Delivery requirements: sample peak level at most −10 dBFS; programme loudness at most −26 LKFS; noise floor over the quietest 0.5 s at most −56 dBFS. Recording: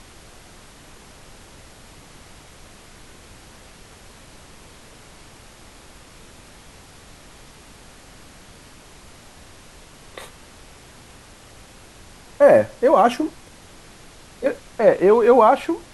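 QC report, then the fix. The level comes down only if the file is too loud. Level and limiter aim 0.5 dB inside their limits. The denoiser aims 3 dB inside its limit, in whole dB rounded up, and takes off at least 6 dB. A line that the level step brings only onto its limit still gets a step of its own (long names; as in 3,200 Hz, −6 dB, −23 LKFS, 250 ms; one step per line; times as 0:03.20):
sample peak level −2.0 dBFS: out of spec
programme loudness −16.5 LKFS: out of spec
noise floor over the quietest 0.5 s −45 dBFS: out of spec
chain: broadband denoise 6 dB, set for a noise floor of −45 dBFS
level −10 dB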